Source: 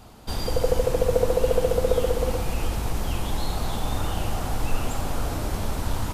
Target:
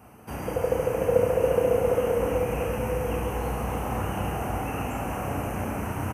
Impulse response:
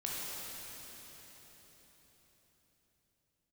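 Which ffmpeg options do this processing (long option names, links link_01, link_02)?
-filter_complex "[0:a]highpass=frequency=70:width=0.5412,highpass=frequency=70:width=1.3066,equalizer=frequency=89:width_type=o:width=0.49:gain=-5,acrossover=split=7000[link_01][link_02];[link_01]asuperstop=centerf=4300:order=12:qfactor=1.3[link_03];[link_02]alimiter=level_in=16dB:limit=-24dB:level=0:latency=1:release=160,volume=-16dB[link_04];[link_03][link_04]amix=inputs=2:normalize=0,asplit=2[link_05][link_06];[link_06]adelay=32,volume=-5.5dB[link_07];[link_05][link_07]amix=inputs=2:normalize=0,asplit=2[link_08][link_09];[1:a]atrim=start_sample=2205,asetrate=32193,aresample=44100[link_10];[link_09][link_10]afir=irnorm=-1:irlink=0,volume=-4dB[link_11];[link_08][link_11]amix=inputs=2:normalize=0,volume=-5.5dB"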